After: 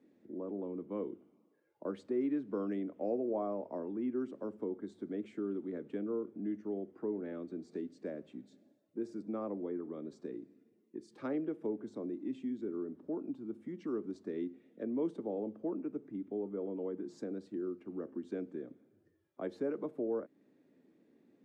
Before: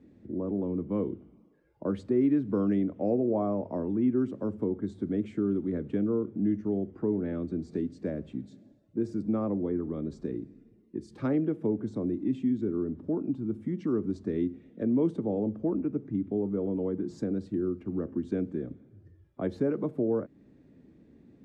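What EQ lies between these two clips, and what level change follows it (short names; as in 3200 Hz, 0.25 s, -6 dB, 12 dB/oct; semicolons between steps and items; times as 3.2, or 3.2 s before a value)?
HPF 310 Hz 12 dB/oct; -5.5 dB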